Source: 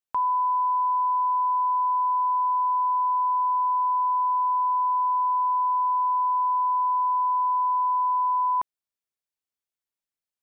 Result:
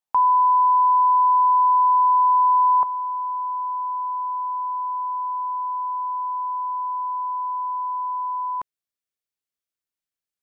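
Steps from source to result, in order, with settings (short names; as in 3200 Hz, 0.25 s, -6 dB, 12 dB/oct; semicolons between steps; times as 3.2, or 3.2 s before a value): bell 850 Hz +11 dB 0.61 oct, from 2.83 s -5 dB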